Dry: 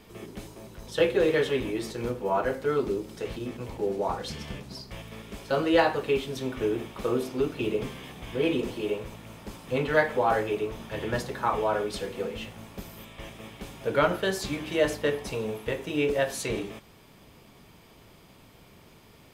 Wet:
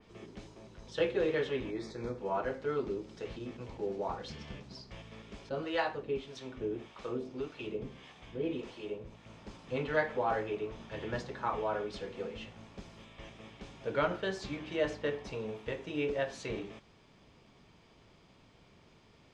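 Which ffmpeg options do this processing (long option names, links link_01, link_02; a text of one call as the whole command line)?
ffmpeg -i in.wav -filter_complex "[0:a]asettb=1/sr,asplit=3[link_01][link_02][link_03];[link_01]atrim=end=1.714[link_04];[link_02]atrim=start=1.71:end=2.18,asetpts=PTS-STARTPTS,afade=type=in:duration=0.004:curve=qsin,afade=type=out:start_time=0.466:duration=0.004:curve=qsin,asuperstop=centerf=2900:order=4:qfactor=2.8[link_05];[link_03]atrim=start=2.176[link_06];[link_04][link_05]acrossfade=duration=0.004:curve1=hsin:curve2=qsin[link_07];[link_07][link_06]acrossfade=duration=0.004:curve1=qsin:curve2=hsin,asettb=1/sr,asplit=3[link_08][link_09][link_10];[link_08]atrim=end=5.494[link_11];[link_09]atrim=start=5.49:end=9.26,asetpts=PTS-STARTPTS,afade=type=in:duration=0.004:curve=qsin,afade=type=out:start_time=3.766:duration=0.004:curve=qsin,acrossover=split=590[link_12][link_13];[link_12]aeval=exprs='val(0)*(1-0.7/2+0.7/2*cos(2*PI*1.7*n/s))':channel_layout=same[link_14];[link_13]aeval=exprs='val(0)*(1-0.7/2-0.7/2*cos(2*PI*1.7*n/s))':channel_layout=same[link_15];[link_14][link_15]amix=inputs=2:normalize=0[link_16];[link_10]atrim=start=9.256[link_17];[link_11][link_16]acrossfade=duration=0.004:curve1=hsin:curve2=qsin[link_18];[link_18][link_17]acrossfade=duration=0.004:curve1=qsin:curve2=hsin,lowpass=frequency=6700:width=0.5412,lowpass=frequency=6700:width=1.3066,adynamicequalizer=threshold=0.00631:dfrequency=3600:dqfactor=0.7:tfrequency=3600:tqfactor=0.7:attack=5:release=100:ratio=0.375:range=2.5:mode=cutabove:tftype=highshelf,volume=-7.5dB" out.wav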